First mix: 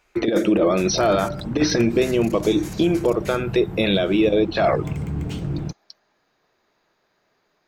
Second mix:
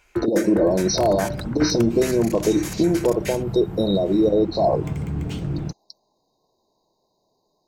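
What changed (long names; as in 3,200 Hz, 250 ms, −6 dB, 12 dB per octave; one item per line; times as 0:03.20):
speech: add linear-phase brick-wall band-stop 1,100–3,700 Hz
first sound +6.5 dB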